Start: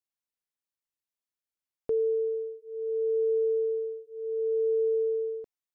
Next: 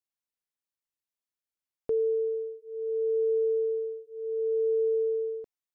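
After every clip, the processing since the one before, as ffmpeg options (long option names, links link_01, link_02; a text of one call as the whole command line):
ffmpeg -i in.wav -af anull out.wav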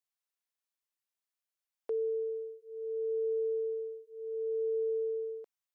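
ffmpeg -i in.wav -af "highpass=590" out.wav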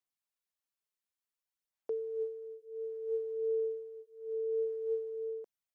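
ffmpeg -i in.wav -af "aphaser=in_gain=1:out_gain=1:delay=4.7:decay=0.46:speed=0.56:type=sinusoidal,volume=-4dB" out.wav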